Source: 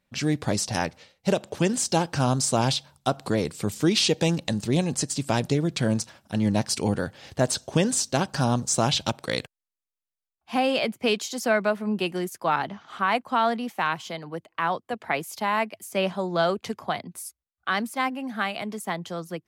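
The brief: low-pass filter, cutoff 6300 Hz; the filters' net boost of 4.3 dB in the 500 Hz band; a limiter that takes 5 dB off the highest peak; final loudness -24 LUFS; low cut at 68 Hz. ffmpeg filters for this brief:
-af "highpass=68,lowpass=6.3k,equalizer=f=500:t=o:g=5.5,volume=1.5dB,alimiter=limit=-9.5dB:level=0:latency=1"

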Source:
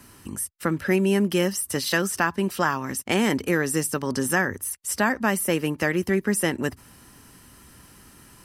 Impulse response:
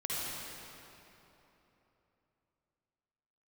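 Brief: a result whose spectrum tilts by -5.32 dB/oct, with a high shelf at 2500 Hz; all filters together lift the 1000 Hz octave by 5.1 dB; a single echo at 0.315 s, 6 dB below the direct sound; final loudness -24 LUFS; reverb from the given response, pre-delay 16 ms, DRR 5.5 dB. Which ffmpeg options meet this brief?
-filter_complex "[0:a]equalizer=f=1k:t=o:g=7.5,highshelf=f=2.5k:g=-7,aecho=1:1:315:0.501,asplit=2[a][b];[1:a]atrim=start_sample=2205,adelay=16[c];[b][c]afir=irnorm=-1:irlink=0,volume=-11dB[d];[a][d]amix=inputs=2:normalize=0,volume=-2dB"

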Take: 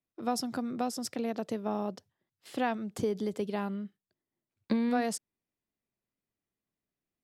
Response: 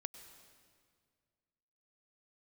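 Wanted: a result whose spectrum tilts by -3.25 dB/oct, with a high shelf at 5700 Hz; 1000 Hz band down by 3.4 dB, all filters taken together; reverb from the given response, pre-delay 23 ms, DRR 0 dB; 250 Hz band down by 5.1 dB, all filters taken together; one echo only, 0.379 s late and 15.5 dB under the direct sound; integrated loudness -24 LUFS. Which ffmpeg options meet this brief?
-filter_complex "[0:a]equalizer=f=250:t=o:g=-5.5,equalizer=f=1k:t=o:g=-5,highshelf=f=5.7k:g=5.5,aecho=1:1:379:0.168,asplit=2[a][b];[1:a]atrim=start_sample=2205,adelay=23[c];[b][c]afir=irnorm=-1:irlink=0,volume=3.5dB[d];[a][d]amix=inputs=2:normalize=0,volume=10dB"

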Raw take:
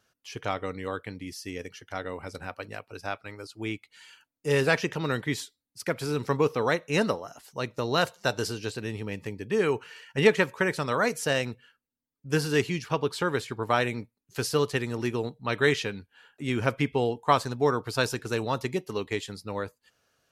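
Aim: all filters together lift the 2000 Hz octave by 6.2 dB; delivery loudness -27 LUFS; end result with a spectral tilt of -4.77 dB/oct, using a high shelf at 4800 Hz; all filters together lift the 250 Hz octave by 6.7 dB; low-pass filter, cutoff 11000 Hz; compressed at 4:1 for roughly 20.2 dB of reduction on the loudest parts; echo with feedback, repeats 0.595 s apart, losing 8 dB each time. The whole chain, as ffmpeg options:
-af "lowpass=11k,equalizer=f=250:t=o:g=8.5,equalizer=f=2k:t=o:g=7,highshelf=f=4.8k:g=4,acompressor=threshold=-35dB:ratio=4,aecho=1:1:595|1190|1785|2380|2975:0.398|0.159|0.0637|0.0255|0.0102,volume=10.5dB"

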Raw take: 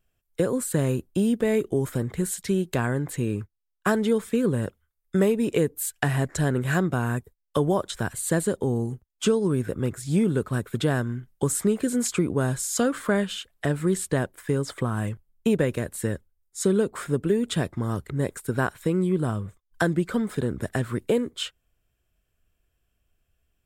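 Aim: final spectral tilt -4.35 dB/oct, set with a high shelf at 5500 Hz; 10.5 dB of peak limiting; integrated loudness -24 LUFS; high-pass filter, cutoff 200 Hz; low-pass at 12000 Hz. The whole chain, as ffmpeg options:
-af "highpass=200,lowpass=12k,highshelf=f=5.5k:g=4,volume=5.5dB,alimiter=limit=-12dB:level=0:latency=1"

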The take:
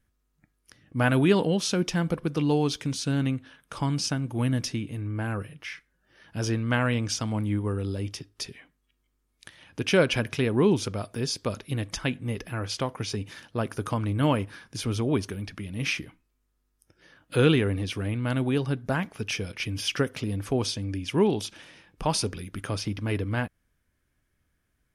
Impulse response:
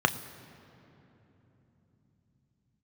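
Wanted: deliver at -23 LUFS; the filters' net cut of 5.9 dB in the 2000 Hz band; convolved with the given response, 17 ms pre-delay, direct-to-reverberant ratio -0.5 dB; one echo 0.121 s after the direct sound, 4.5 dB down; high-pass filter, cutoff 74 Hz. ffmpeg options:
-filter_complex "[0:a]highpass=74,equalizer=f=2k:t=o:g=-8.5,aecho=1:1:121:0.596,asplit=2[a][b];[1:a]atrim=start_sample=2205,adelay=17[c];[b][c]afir=irnorm=-1:irlink=0,volume=-13dB[d];[a][d]amix=inputs=2:normalize=0,volume=0.5dB"

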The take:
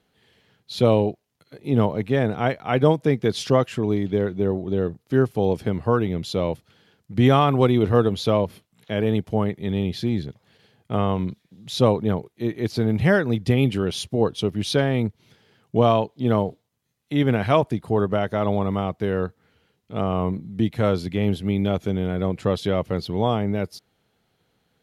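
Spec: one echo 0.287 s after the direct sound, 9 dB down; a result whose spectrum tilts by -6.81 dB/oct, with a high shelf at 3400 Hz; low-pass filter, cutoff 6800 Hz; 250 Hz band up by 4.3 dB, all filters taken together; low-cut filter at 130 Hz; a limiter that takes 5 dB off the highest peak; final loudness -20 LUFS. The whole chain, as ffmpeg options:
-af "highpass=130,lowpass=6.8k,equalizer=f=250:t=o:g=6,highshelf=f=3.4k:g=-3,alimiter=limit=-8dB:level=0:latency=1,aecho=1:1:287:0.355,volume=1.5dB"

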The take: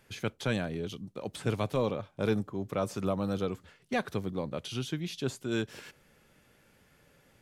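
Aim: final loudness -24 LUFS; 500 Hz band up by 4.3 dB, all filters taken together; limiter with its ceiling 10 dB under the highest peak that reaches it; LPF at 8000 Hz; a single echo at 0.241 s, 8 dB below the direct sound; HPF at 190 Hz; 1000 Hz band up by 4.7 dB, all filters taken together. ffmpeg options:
-af "highpass=190,lowpass=8k,equalizer=f=500:t=o:g=4,equalizer=f=1k:t=o:g=5,alimiter=limit=-24dB:level=0:latency=1,aecho=1:1:241:0.398,volume=12dB"

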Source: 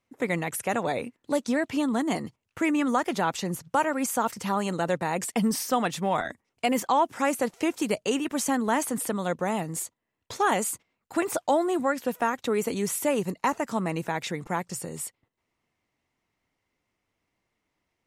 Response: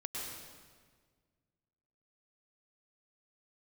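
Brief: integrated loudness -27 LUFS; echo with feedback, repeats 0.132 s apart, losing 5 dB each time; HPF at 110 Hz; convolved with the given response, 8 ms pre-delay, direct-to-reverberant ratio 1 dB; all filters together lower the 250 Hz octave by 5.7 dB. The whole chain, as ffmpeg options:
-filter_complex "[0:a]highpass=110,equalizer=f=250:t=o:g=-7,aecho=1:1:132|264|396|528|660|792|924:0.562|0.315|0.176|0.0988|0.0553|0.031|0.0173,asplit=2[a][b];[1:a]atrim=start_sample=2205,adelay=8[c];[b][c]afir=irnorm=-1:irlink=0,volume=-2dB[d];[a][d]amix=inputs=2:normalize=0,volume=-1.5dB"

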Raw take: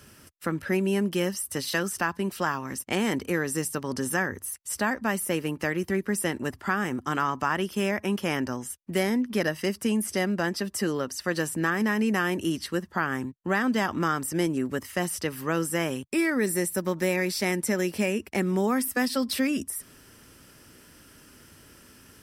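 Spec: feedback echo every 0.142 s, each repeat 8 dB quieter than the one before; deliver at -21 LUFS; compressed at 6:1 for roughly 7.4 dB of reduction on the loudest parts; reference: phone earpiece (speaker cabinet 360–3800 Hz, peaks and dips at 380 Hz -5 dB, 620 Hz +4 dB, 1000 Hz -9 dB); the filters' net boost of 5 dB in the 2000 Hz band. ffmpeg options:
-af "equalizer=f=2k:t=o:g=6.5,acompressor=threshold=-26dB:ratio=6,highpass=360,equalizer=f=380:t=q:w=4:g=-5,equalizer=f=620:t=q:w=4:g=4,equalizer=f=1k:t=q:w=4:g=-9,lowpass=f=3.8k:w=0.5412,lowpass=f=3.8k:w=1.3066,aecho=1:1:142|284|426|568|710:0.398|0.159|0.0637|0.0255|0.0102,volume=12.5dB"

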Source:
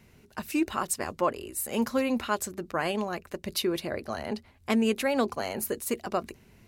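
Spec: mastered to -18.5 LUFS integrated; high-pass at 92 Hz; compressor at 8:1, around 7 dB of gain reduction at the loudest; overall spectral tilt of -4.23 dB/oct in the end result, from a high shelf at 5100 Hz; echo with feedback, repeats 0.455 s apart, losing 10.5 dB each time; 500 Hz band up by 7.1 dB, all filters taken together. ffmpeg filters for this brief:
-af "highpass=92,equalizer=f=500:t=o:g=8.5,highshelf=f=5.1k:g=-5.5,acompressor=threshold=-23dB:ratio=8,aecho=1:1:455|910|1365:0.299|0.0896|0.0269,volume=11.5dB"

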